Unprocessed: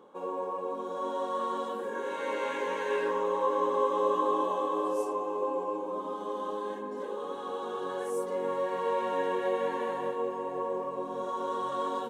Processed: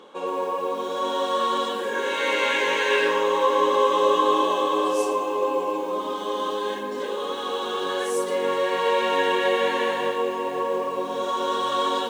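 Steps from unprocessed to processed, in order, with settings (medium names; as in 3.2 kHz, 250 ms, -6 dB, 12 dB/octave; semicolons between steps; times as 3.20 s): frequency weighting D; bit-crushed delay 116 ms, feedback 35%, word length 8-bit, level -13 dB; trim +7.5 dB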